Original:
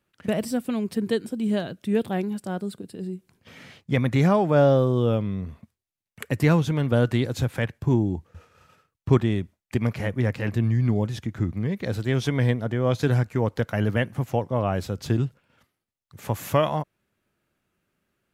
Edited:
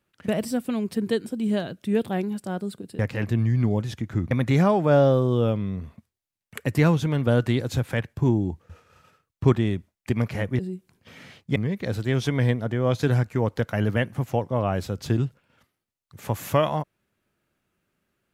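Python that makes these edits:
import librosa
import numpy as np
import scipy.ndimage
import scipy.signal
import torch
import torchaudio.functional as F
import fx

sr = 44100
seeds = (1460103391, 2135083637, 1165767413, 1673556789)

y = fx.edit(x, sr, fx.swap(start_s=2.99, length_s=0.97, other_s=10.24, other_length_s=1.32), tone=tone)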